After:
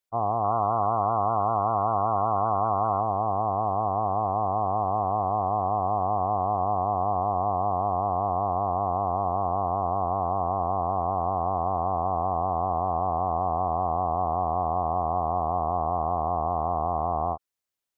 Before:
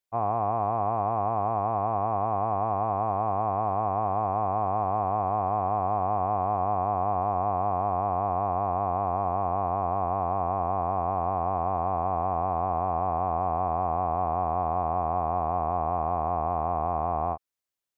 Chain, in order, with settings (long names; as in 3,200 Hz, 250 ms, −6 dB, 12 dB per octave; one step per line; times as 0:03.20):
gate on every frequency bin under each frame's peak −30 dB strong
0:00.44–0:03.01: parametric band 1,400 Hz +14.5 dB 0.4 octaves
level +1 dB